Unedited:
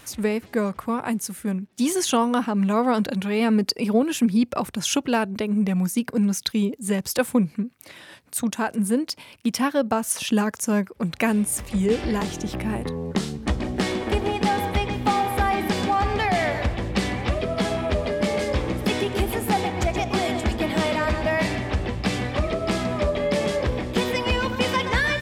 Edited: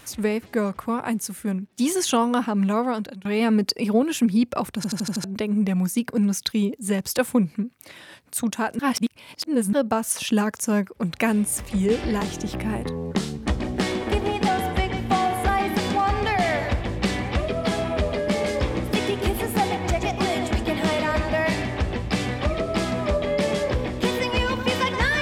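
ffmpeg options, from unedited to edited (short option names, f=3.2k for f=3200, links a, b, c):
-filter_complex "[0:a]asplit=12[a][b][c][d][e][f][g][h][i][j][k][l];[a]atrim=end=3.25,asetpts=PTS-STARTPTS,afade=t=out:st=2.67:d=0.58:silence=0.0944061[m];[b]atrim=start=3.25:end=4.842,asetpts=PTS-STARTPTS,afade=t=in:d=0.004:c=hsin:silence=0.0944061[n];[c]atrim=start=4.758:end=4.842[o];[d]atrim=start=4.758:end=4.842[p];[e]atrim=start=4.758:end=4.842[q];[f]atrim=start=4.758:end=4.842[r];[g]atrim=start=4.758:end=4.842[s];[h]atrim=start=5.238:end=8.792[t];[i]atrim=start=8.788:end=9.732,asetpts=PTS-STARTPTS,areverse[u];[j]atrim=start=9.728:end=14.484[v];[k]atrim=start=14.48:end=15.41,asetpts=PTS-STARTPTS,asetrate=41013,aresample=44100[w];[l]atrim=start=15.406[x];[m][n]concat=n=2:v=0:a=1[y];[y][o]acrossfade=d=0.004:c1=hsin:c2=hsin[z];[z][p]acrossfade=d=0.004:c1=hsin:c2=hsin[aa];[aa][q]acrossfade=d=0.004:c1=hsin:c2=hsin[ab];[ab][r]acrossfade=d=0.004:c1=hsin:c2=hsin[ac];[ac][s]acrossfade=d=0.004:c1=hsin:c2=hsin[ad];[ad][t]acrossfade=d=0.004:c1=hsin:c2=hsin[ae];[ae][u]acrossfade=d=0.004:c1=hsin:c2=hsin[af];[af][v]acrossfade=d=0.004:c1=hsin:c2=hsin[ag];[ag][w]acrossfade=d=0.004:c1=hsin:c2=hsin[ah];[ah][x]acrossfade=d=0.004:c1=hsin:c2=hsin"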